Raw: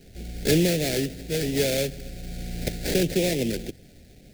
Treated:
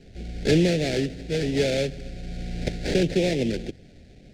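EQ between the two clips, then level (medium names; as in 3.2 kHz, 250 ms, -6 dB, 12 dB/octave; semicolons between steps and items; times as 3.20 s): distance through air 100 m; +1.5 dB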